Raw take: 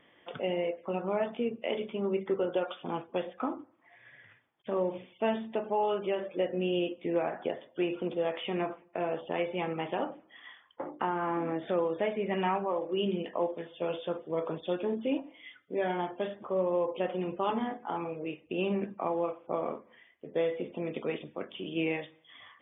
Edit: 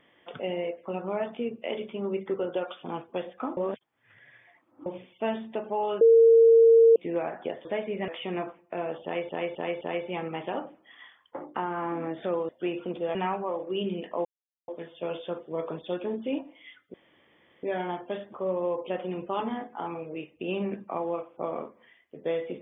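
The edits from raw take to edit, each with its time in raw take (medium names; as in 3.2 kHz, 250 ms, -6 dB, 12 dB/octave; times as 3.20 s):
3.57–4.86 s: reverse
6.01–6.96 s: bleep 457 Hz -13 dBFS
7.65–8.31 s: swap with 11.94–12.37 s
9.26–9.52 s: loop, 4 plays
13.47 s: insert silence 0.43 s
15.73 s: insert room tone 0.69 s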